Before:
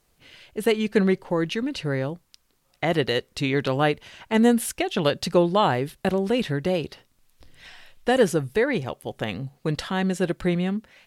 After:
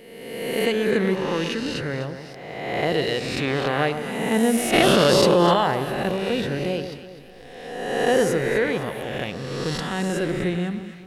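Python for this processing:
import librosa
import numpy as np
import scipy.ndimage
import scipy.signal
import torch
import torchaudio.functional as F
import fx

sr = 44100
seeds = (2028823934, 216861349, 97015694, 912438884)

y = fx.spec_swells(x, sr, rise_s=1.44)
y = fx.echo_alternate(y, sr, ms=126, hz=1200.0, feedback_pct=65, wet_db=-8.5)
y = fx.env_flatten(y, sr, amount_pct=100, at=(4.72, 5.53), fade=0.02)
y = y * librosa.db_to_amplitude(-3.5)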